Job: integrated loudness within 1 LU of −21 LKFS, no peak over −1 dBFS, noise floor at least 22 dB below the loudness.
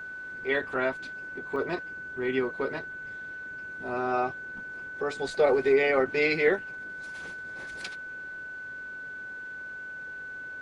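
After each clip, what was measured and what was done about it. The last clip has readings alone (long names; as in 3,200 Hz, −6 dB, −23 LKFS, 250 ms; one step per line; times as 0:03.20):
number of dropouts 1; longest dropout 1.3 ms; interfering tone 1,500 Hz; level of the tone −37 dBFS; integrated loudness −30.5 LKFS; sample peak −10.5 dBFS; target loudness −21.0 LKFS
→ repair the gap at 0:01.56, 1.3 ms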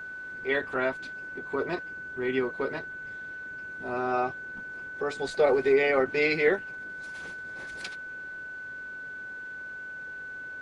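number of dropouts 0; interfering tone 1,500 Hz; level of the tone −37 dBFS
→ notch filter 1,500 Hz, Q 30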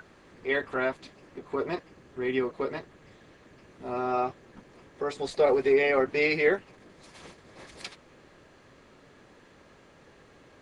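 interfering tone none found; integrated loudness −28.0 LKFS; sample peak −11.0 dBFS; target loudness −21.0 LKFS
→ level +7 dB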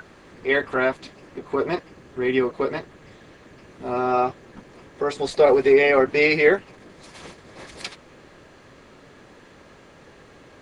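integrated loudness −21.0 LKFS; sample peak −4.0 dBFS; background noise floor −50 dBFS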